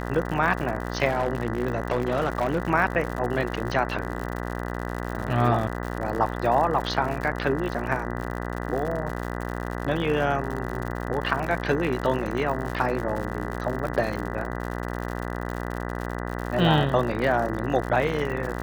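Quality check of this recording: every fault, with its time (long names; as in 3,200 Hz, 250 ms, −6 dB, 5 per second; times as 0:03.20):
mains buzz 60 Hz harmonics 33 −31 dBFS
surface crackle 97 per second −30 dBFS
0:01.07–0:02.60: clipping −18.5 dBFS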